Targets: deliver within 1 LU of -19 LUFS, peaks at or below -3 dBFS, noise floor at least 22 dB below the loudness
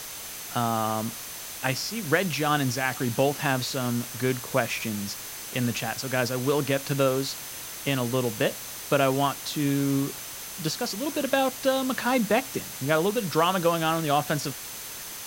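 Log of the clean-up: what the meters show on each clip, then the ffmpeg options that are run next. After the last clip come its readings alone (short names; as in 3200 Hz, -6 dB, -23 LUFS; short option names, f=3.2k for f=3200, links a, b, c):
steady tone 6200 Hz; tone level -46 dBFS; noise floor -38 dBFS; noise floor target -49 dBFS; loudness -26.5 LUFS; peak -7.0 dBFS; loudness target -19.0 LUFS
-> -af "bandreject=f=6.2k:w=30"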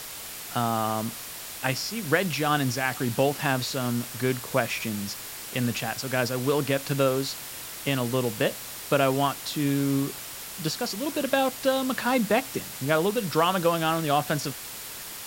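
steady tone none; noise floor -39 dBFS; noise floor target -49 dBFS
-> -af "afftdn=nr=10:nf=-39"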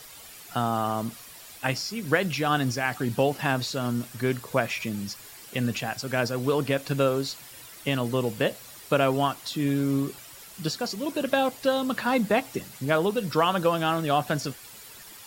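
noise floor -46 dBFS; noise floor target -49 dBFS
-> -af "afftdn=nr=6:nf=-46"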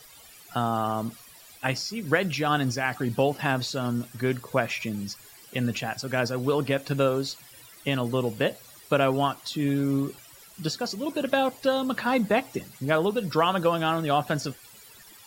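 noise floor -50 dBFS; loudness -27.0 LUFS; peak -7.0 dBFS; loudness target -19.0 LUFS
-> -af "volume=8dB,alimiter=limit=-3dB:level=0:latency=1"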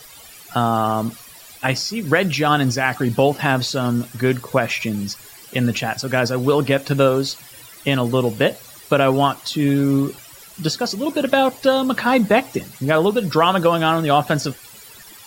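loudness -19.5 LUFS; peak -3.0 dBFS; noise floor -42 dBFS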